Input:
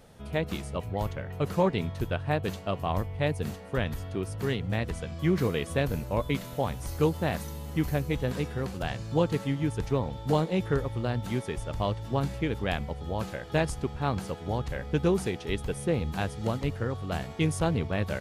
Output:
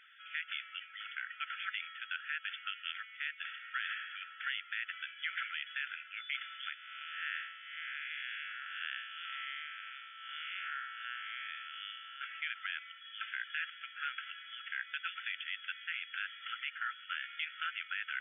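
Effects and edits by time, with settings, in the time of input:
3.37–3.88 s: reverb throw, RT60 1.3 s, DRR 6 dB
6.74–12.21 s: spectral blur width 212 ms
whole clip: FFT band-pass 1.3–3.5 kHz; peak limiter -31 dBFS; trim +6 dB

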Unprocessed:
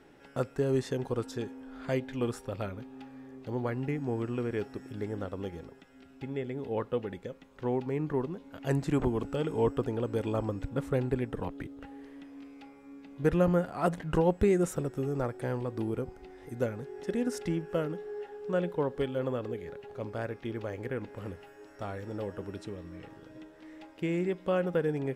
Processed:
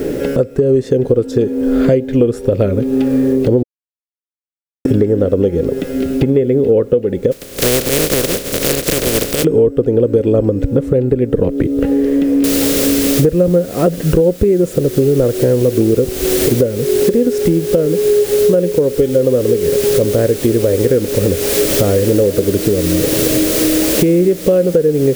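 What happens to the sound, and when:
3.63–4.85 s: mute
7.31–9.43 s: spectral contrast reduction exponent 0.12
12.44 s: noise floor step -68 dB -42 dB
whole clip: resonant low shelf 660 Hz +9 dB, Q 3; compression 10:1, threshold -37 dBFS; loudness maximiser +28.5 dB; trim -1 dB

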